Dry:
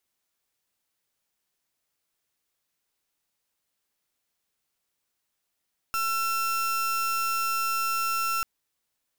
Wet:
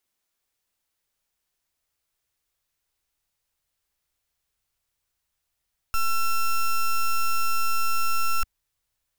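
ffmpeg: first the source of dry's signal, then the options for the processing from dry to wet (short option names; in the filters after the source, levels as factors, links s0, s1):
-f lavfi -i "aevalsrc='0.0447*(2*lt(mod(1350*t,1),0.35)-1)':d=2.49:s=44100"
-af "asubboost=boost=7:cutoff=88"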